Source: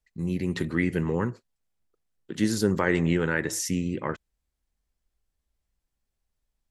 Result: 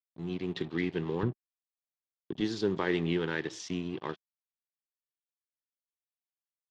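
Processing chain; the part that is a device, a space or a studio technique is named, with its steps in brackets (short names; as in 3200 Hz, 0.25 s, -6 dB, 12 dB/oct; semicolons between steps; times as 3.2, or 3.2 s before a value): blown loudspeaker (crossover distortion -40 dBFS; speaker cabinet 150–5100 Hz, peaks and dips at 220 Hz -6 dB, 380 Hz +3 dB, 550 Hz -6 dB, 1400 Hz -5 dB, 2000 Hz -4 dB, 3400 Hz +8 dB); 1.23–2.41 tilt -3.5 dB/oct; gain -3.5 dB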